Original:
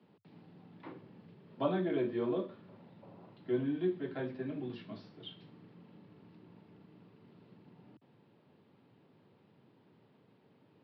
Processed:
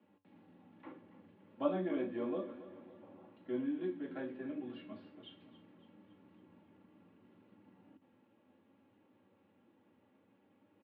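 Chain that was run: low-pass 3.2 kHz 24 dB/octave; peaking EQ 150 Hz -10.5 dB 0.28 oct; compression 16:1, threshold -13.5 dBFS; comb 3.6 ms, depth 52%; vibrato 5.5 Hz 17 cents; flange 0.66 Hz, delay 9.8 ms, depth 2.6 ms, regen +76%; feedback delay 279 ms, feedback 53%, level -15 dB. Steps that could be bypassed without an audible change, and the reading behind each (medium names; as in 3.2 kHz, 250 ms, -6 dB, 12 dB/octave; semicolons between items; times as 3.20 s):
compression, threshold -13.5 dBFS: peak at its input -20.0 dBFS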